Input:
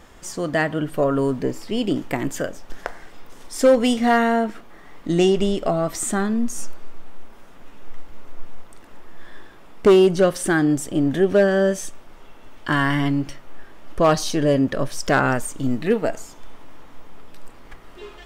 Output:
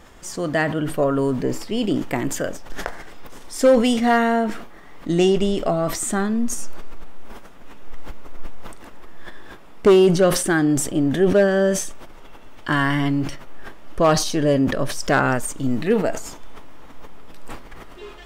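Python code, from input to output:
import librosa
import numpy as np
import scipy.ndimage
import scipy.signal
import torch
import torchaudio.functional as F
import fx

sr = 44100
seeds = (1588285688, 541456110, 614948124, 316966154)

y = fx.sustainer(x, sr, db_per_s=68.0)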